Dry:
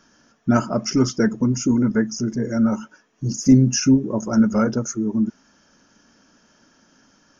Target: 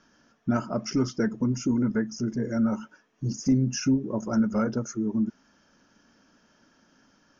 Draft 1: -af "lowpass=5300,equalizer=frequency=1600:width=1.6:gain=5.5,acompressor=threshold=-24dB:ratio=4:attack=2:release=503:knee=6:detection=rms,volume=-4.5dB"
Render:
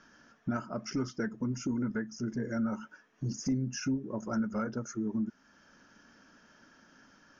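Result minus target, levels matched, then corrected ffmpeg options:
downward compressor: peak gain reduction +9 dB; 2,000 Hz band +4.5 dB
-af "lowpass=5300,acompressor=threshold=-12dB:ratio=4:attack=2:release=503:knee=6:detection=rms,volume=-4.5dB"

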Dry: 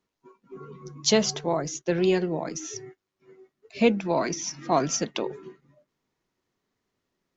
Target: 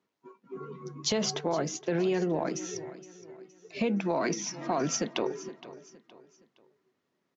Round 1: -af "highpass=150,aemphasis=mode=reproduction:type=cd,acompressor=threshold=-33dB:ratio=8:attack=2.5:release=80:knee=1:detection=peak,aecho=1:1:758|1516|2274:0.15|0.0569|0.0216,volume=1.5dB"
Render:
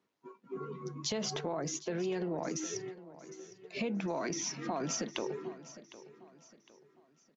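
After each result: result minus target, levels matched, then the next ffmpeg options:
echo 291 ms late; downward compressor: peak gain reduction +7 dB
-af "highpass=150,aemphasis=mode=reproduction:type=cd,acompressor=threshold=-33dB:ratio=8:attack=2.5:release=80:knee=1:detection=peak,aecho=1:1:467|934|1401:0.15|0.0569|0.0216,volume=1.5dB"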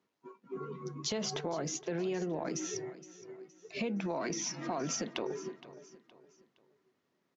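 downward compressor: peak gain reduction +7 dB
-af "highpass=150,aemphasis=mode=reproduction:type=cd,acompressor=threshold=-25dB:ratio=8:attack=2.5:release=80:knee=1:detection=peak,aecho=1:1:467|934|1401:0.15|0.0569|0.0216,volume=1.5dB"

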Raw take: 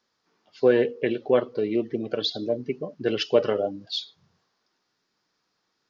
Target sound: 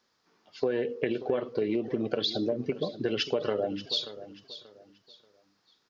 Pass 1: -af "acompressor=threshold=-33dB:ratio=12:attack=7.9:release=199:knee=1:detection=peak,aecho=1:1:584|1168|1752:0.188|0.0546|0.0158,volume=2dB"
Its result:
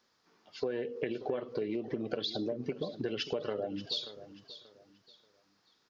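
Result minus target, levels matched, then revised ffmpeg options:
downward compressor: peak gain reduction +6.5 dB
-af "acompressor=threshold=-26dB:ratio=12:attack=7.9:release=199:knee=1:detection=peak,aecho=1:1:584|1168|1752:0.188|0.0546|0.0158,volume=2dB"

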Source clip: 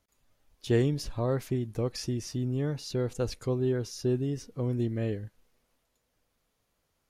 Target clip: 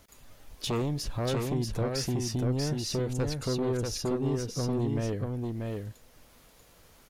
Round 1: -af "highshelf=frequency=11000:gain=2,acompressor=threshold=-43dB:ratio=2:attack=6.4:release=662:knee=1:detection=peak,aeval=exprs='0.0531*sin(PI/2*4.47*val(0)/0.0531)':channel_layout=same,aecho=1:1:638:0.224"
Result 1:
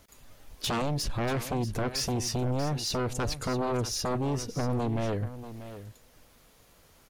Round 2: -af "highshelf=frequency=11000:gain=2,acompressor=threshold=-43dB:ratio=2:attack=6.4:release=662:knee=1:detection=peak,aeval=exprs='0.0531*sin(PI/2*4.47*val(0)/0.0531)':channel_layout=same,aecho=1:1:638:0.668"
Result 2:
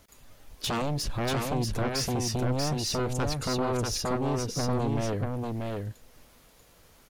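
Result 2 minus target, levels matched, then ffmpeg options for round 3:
downward compressor: peak gain reduction −5 dB
-af "highshelf=frequency=11000:gain=2,acompressor=threshold=-52.5dB:ratio=2:attack=6.4:release=662:knee=1:detection=peak,aeval=exprs='0.0531*sin(PI/2*4.47*val(0)/0.0531)':channel_layout=same,aecho=1:1:638:0.668"

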